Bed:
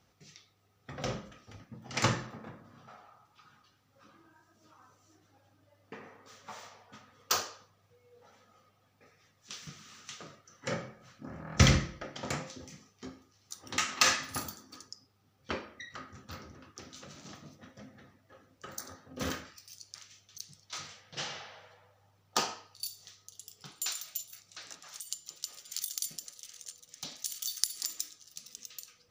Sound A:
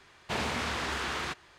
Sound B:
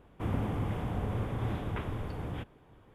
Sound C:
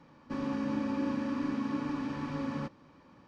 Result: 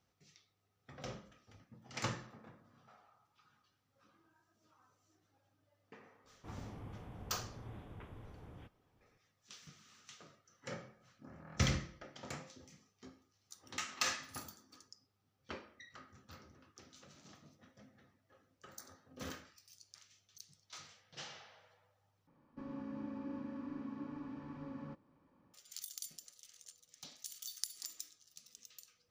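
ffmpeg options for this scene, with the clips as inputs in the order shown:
-filter_complex "[0:a]volume=-10.5dB[a];[3:a]highshelf=f=2.1k:g=-11[b];[a]asplit=2[c][d];[c]atrim=end=22.274[e];[b]atrim=end=3.27,asetpts=PTS-STARTPTS,volume=-11.5dB[f];[d]atrim=start=25.536[g];[2:a]atrim=end=2.94,asetpts=PTS-STARTPTS,volume=-16.5dB,afade=t=in:d=0.004:c=hsin,afade=t=out:st=2.936:d=0.004:c=hsin,adelay=6240[h];[e][f]acrossfade=d=0.004:c1=hsin:c2=hsin[i];[i][g]acrossfade=d=0.004:c1=hsin:c2=hsin[j];[j][h]amix=inputs=2:normalize=0"

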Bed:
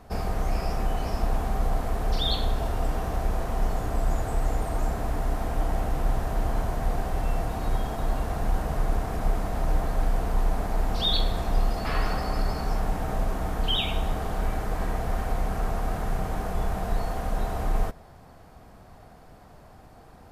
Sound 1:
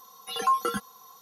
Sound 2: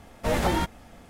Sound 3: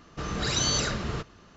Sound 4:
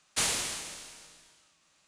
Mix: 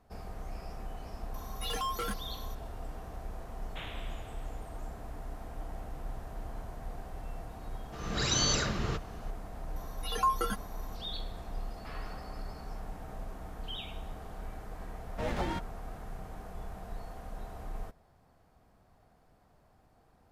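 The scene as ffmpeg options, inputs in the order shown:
-filter_complex "[1:a]asplit=2[a][b];[0:a]volume=-15dB[c];[a]asoftclip=type=tanh:threshold=-31.5dB[d];[4:a]aresample=8000,aresample=44100[e];[3:a]dynaudnorm=f=220:g=3:m=14dB[f];[2:a]adynamicsmooth=sensitivity=6.5:basefreq=2.9k[g];[d]atrim=end=1.21,asetpts=PTS-STARTPTS,volume=-0.5dB,afade=t=in:d=0.004:c=hsin,afade=t=out:st=1.206:d=0.004:c=hsin,adelay=1340[h];[e]atrim=end=1.87,asetpts=PTS-STARTPTS,volume=-11dB,afade=t=in:d=0.004:c=hsin,afade=t=out:st=1.866:d=0.004:c=hsin,adelay=3590[i];[f]atrim=end=1.56,asetpts=PTS-STARTPTS,volume=-14dB,afade=t=in:d=0.004:c=hsin,afade=t=out:st=1.556:d=0.004:c=hsin,adelay=7750[j];[b]atrim=end=1.21,asetpts=PTS-STARTPTS,volume=-4.5dB,afade=t=in:d=0.004:c=hsin,afade=t=out:st=1.206:d=0.004:c=hsin,adelay=9760[k];[g]atrim=end=1.09,asetpts=PTS-STARTPTS,volume=-9.5dB,afade=t=in:d=0.004:c=hsin,afade=t=out:st=1.086:d=0.004:c=hsin,adelay=14940[l];[c][h][i][j][k][l]amix=inputs=6:normalize=0"

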